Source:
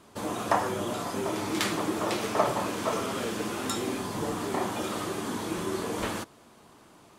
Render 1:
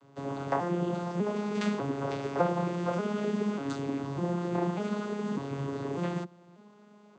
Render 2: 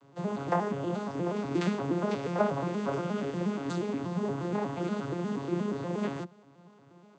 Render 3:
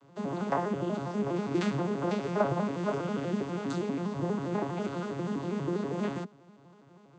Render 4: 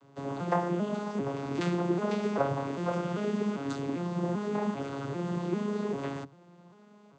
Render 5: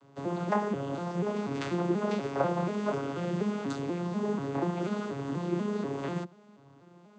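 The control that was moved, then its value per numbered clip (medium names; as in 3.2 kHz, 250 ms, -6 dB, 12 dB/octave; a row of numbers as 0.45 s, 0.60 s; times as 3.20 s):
vocoder on a broken chord, a note every: 596 ms, 119 ms, 81 ms, 395 ms, 243 ms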